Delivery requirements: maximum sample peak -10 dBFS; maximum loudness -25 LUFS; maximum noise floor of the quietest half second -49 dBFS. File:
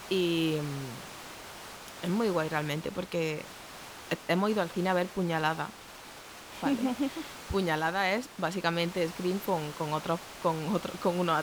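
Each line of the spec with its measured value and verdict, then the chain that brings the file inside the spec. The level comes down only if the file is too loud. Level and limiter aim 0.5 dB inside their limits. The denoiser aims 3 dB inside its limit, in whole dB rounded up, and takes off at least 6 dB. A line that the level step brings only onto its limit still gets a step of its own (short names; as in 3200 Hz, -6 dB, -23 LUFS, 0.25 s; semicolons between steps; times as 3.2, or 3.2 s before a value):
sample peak -13.5 dBFS: OK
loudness -31.0 LUFS: OK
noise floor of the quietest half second -48 dBFS: fail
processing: denoiser 6 dB, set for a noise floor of -48 dBFS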